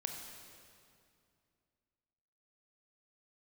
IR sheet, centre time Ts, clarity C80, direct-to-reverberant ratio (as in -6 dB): 66 ms, 5.0 dB, 2.5 dB